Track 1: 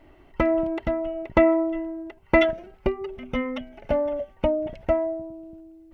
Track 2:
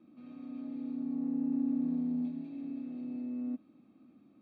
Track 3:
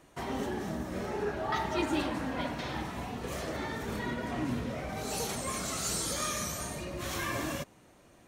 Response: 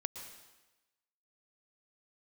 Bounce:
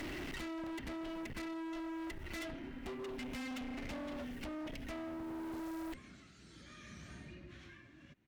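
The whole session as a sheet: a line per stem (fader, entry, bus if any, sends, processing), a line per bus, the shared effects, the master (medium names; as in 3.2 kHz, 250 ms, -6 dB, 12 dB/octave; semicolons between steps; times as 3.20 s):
-1.0 dB, 0.00 s, no send, treble shelf 2.2 kHz +7 dB; feedback comb 140 Hz, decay 1.7 s, mix 40%; three bands compressed up and down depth 100%
-9.5 dB, 2.05 s, no send, none
-7.5 dB, 0.50 s, no send, low-pass 3 kHz 12 dB/octave; compression, threshold -36 dBFS, peak gain reduction 10 dB; tremolo triangle 0.64 Hz, depth 75%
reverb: none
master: high-order bell 730 Hz -12 dB; one-sided clip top -43 dBFS, bottom -40 dBFS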